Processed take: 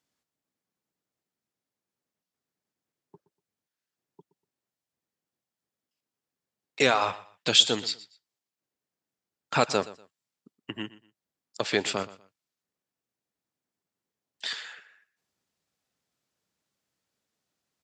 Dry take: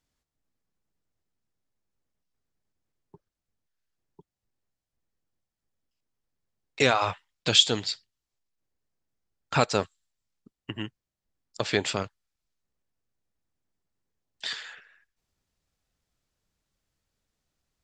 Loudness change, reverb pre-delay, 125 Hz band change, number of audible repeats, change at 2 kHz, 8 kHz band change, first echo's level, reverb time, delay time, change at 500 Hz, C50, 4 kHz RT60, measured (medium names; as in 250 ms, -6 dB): 0.0 dB, no reverb, -6.0 dB, 2, 0.0 dB, 0.0 dB, -18.0 dB, no reverb, 121 ms, 0.0 dB, no reverb, no reverb